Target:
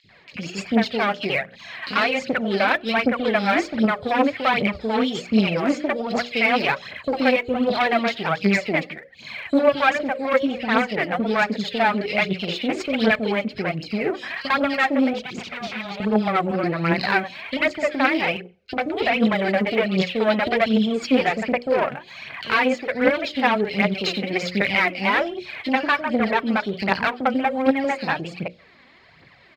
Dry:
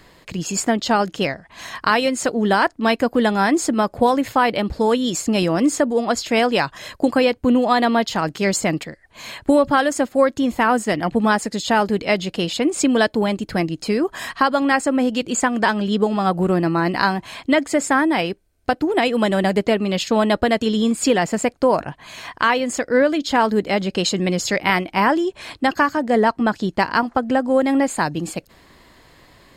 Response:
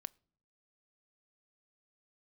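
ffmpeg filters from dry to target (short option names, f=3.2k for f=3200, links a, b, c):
-filter_complex "[0:a]asettb=1/sr,asplit=3[a][b][c];[a]atrim=end=15.094[d];[b]atrim=start=15.09:end=15.96,asetpts=PTS-STARTPTS,afade=t=in:d=0.004:c=qsin,afade=t=out:st=0.866:d=0.004:c=qsin,aeval=exprs='0.0708*(abs(mod(val(0)/0.0708+3,4)-2)-1)':c=same[e];[c]atrim=start=15.956[f];[d][e]acrossfade=d=0.004:c1=hsin:c2=qsin[g];[g][f]acrossfade=d=0.004:c1=qsin:c2=hsin,acrossover=split=440|3100[h][i][j];[h]adelay=40[k];[i]adelay=90[l];[k][l][j]amix=inputs=3:normalize=0,aeval=exprs='(tanh(5.62*val(0)+0.75)-tanh(0.75))/5.62':c=same,highpass=120,equalizer=f=310:t=q:w=4:g=-6,equalizer=f=990:t=q:w=4:g=-6,equalizer=f=2.3k:t=q:w=4:g=8,lowpass=f=4.5k:w=0.5412,lowpass=f=4.5k:w=1.3066,bandreject=f=60:t=h:w=6,bandreject=f=120:t=h:w=6,bandreject=f=180:t=h:w=6,bandreject=f=240:t=h:w=6,bandreject=f=300:t=h:w=6,bandreject=f=360:t=h:w=6,bandreject=f=420:t=h:w=6,bandreject=f=480:t=h:w=6,bandreject=f=540:t=h:w=6,bandreject=f=600:t=h:w=6,asplit=2[m][n];[1:a]atrim=start_sample=2205,afade=t=out:st=0.26:d=0.01,atrim=end_sample=11907,asetrate=31311,aresample=44100[o];[n][o]afir=irnorm=-1:irlink=0,volume=6dB[p];[m][p]amix=inputs=2:normalize=0,aphaser=in_gain=1:out_gain=1:delay=4.1:decay=0.56:speed=1.3:type=triangular,volume=-5dB"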